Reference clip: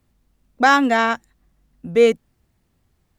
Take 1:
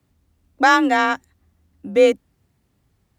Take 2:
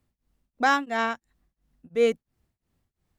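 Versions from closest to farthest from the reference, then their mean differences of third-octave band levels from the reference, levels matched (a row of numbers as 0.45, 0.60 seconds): 2, 1; 2.0, 3.5 decibels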